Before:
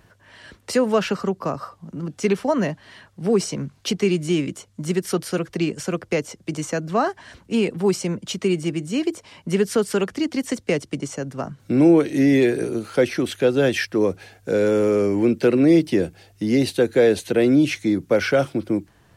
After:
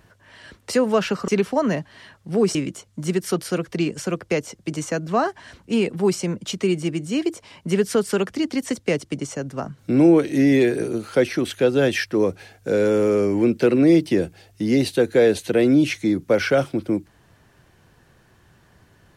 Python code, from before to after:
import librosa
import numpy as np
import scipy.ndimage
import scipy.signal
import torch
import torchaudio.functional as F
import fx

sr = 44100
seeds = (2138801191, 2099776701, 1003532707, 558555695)

y = fx.edit(x, sr, fx.cut(start_s=1.28, length_s=0.92),
    fx.cut(start_s=3.47, length_s=0.89), tone=tone)